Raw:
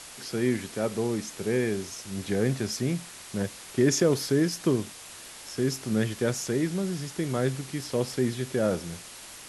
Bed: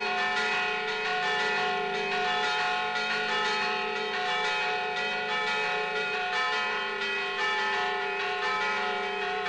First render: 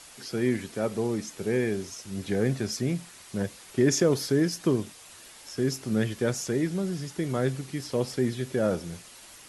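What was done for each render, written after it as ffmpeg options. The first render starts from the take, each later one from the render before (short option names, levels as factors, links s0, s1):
-af "afftdn=nr=6:nf=-45"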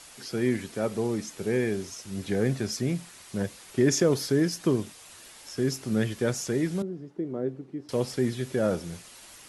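-filter_complex "[0:a]asettb=1/sr,asplit=3[s0][s1][s2];[s0]atrim=end=6.824[s3];[s1]atrim=start=6.82:end=7.89,asetpts=PTS-STARTPTS,afade=t=in:d=0.004:c=qsin,afade=t=out:st=1.066:d=0.004:c=qsin,bandpass=f=340:t=q:w=1.5[s4];[s2]atrim=start=7.886[s5];[s3][s4]acrossfade=d=0.004:c1=hsin:c2=qsin[s6];[s6][s5]acrossfade=d=0.004:c1=qsin:c2=hsin"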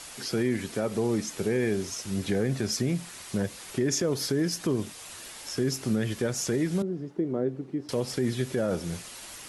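-filter_complex "[0:a]asplit=2[s0][s1];[s1]acompressor=threshold=0.0224:ratio=6,volume=0.891[s2];[s0][s2]amix=inputs=2:normalize=0,alimiter=limit=0.133:level=0:latency=1:release=93"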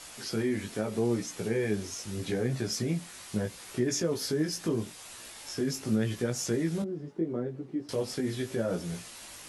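-af "flanger=delay=16.5:depth=3:speed=0.79"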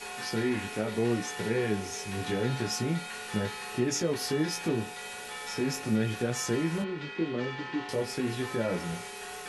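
-filter_complex "[1:a]volume=0.251[s0];[0:a][s0]amix=inputs=2:normalize=0"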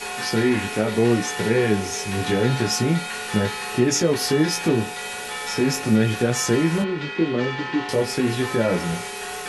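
-af "volume=2.99"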